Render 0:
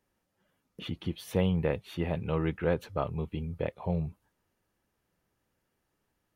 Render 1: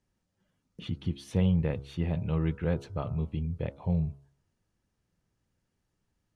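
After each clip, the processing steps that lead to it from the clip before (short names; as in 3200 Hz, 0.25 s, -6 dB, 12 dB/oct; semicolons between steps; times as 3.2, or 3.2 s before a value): Bessel low-pass 6800 Hz, order 4; tone controls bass +10 dB, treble +8 dB; de-hum 69.05 Hz, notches 22; gain -5 dB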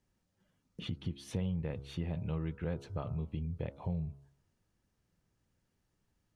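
compressor 3:1, threshold -35 dBFS, peak gain reduction 10.5 dB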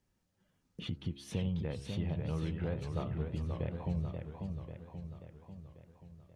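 warbling echo 0.538 s, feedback 57%, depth 182 cents, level -5.5 dB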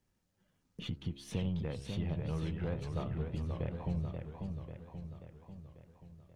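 half-wave gain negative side -3 dB; gain +1 dB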